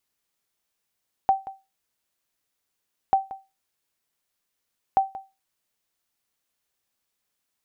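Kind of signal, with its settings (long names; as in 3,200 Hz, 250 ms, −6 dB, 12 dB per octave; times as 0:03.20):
ping with an echo 775 Hz, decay 0.25 s, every 1.84 s, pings 3, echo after 0.18 s, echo −16.5 dB −11 dBFS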